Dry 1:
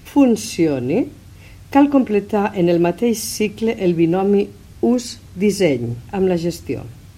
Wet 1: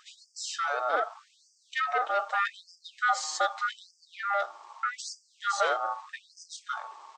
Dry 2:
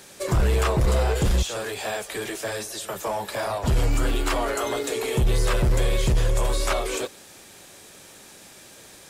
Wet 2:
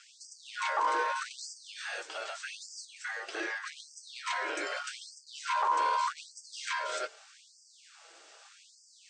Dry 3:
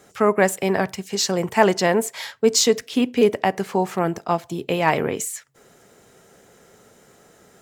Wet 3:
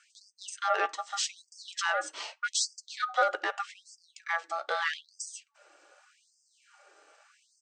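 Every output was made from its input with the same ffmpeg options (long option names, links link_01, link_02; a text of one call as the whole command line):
ffmpeg -i in.wav -af "aresample=16000,asoftclip=type=tanh:threshold=-13.5dB,aresample=44100,flanger=delay=4.2:depth=2:regen=56:speed=0.32:shape=sinusoidal,aeval=exprs='val(0)*sin(2*PI*1000*n/s)':channel_layout=same,afftfilt=real='re*gte(b*sr/1024,260*pow(4700/260,0.5+0.5*sin(2*PI*0.82*pts/sr)))':imag='im*gte(b*sr/1024,260*pow(4700/260,0.5+0.5*sin(2*PI*0.82*pts/sr)))':win_size=1024:overlap=0.75" out.wav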